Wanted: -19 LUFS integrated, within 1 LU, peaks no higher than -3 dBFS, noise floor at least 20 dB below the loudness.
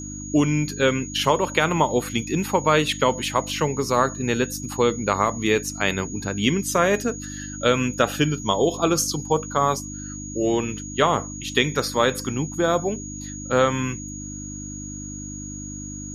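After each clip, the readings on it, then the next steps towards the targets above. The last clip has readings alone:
hum 50 Hz; harmonics up to 300 Hz; hum level -33 dBFS; steady tone 6700 Hz; tone level -36 dBFS; loudness -22.5 LUFS; peak -4.5 dBFS; loudness target -19.0 LUFS
-> de-hum 50 Hz, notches 6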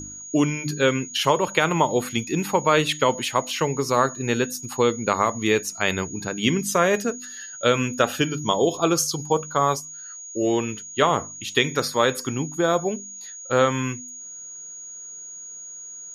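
hum none; steady tone 6700 Hz; tone level -36 dBFS
-> notch 6700 Hz, Q 30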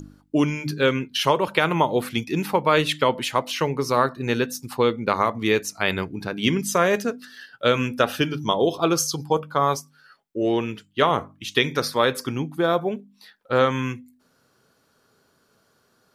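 steady tone none; loudness -23.0 LUFS; peak -5.0 dBFS; loudness target -19.0 LUFS
-> gain +4 dB; limiter -3 dBFS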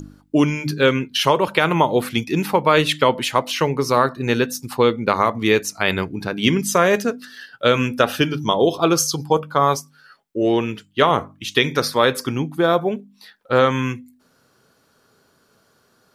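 loudness -19.0 LUFS; peak -3.0 dBFS; noise floor -61 dBFS

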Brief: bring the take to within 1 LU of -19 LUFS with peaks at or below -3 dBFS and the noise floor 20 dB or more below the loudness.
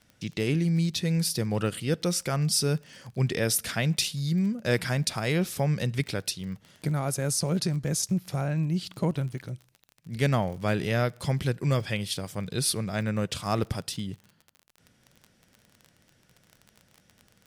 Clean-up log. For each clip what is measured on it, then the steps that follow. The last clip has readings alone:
ticks 30/s; loudness -28.0 LUFS; peak -11.0 dBFS; loudness target -19.0 LUFS
-> de-click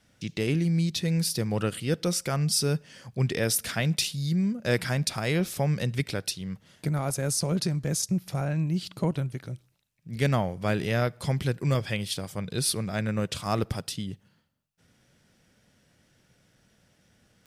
ticks 0.057/s; loudness -28.0 LUFS; peak -11.0 dBFS; loudness target -19.0 LUFS
-> gain +9 dB; limiter -3 dBFS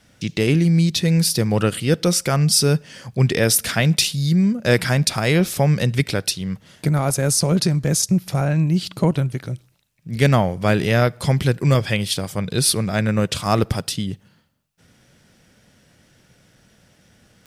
loudness -19.0 LUFS; peak -3.0 dBFS; noise floor -58 dBFS

